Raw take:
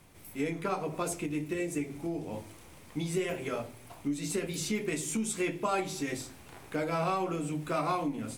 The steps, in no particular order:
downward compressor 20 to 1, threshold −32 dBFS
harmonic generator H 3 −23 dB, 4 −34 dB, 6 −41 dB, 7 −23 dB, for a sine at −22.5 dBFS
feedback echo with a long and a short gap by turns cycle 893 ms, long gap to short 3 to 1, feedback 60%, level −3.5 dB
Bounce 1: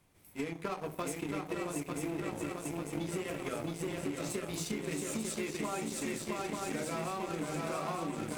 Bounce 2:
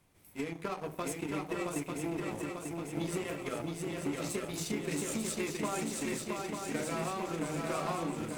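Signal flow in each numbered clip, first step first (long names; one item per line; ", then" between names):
feedback echo with a long and a short gap by turns, then harmonic generator, then downward compressor
harmonic generator, then downward compressor, then feedback echo with a long and a short gap by turns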